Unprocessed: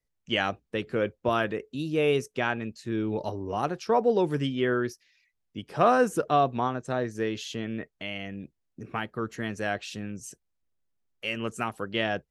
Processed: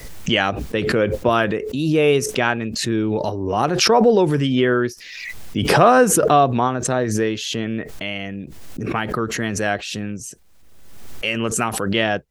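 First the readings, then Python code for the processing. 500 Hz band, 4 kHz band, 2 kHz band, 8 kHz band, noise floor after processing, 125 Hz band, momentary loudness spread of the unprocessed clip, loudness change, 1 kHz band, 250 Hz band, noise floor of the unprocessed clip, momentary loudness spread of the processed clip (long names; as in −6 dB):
+9.0 dB, +11.5 dB, +9.5 dB, +20.0 dB, −41 dBFS, +11.0 dB, 13 LU, +9.5 dB, +8.5 dB, +10.0 dB, −79 dBFS, 14 LU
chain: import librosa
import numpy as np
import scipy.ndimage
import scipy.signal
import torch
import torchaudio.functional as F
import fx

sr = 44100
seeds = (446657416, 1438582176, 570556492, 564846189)

y = fx.pre_swell(x, sr, db_per_s=36.0)
y = y * 10.0 ** (8.0 / 20.0)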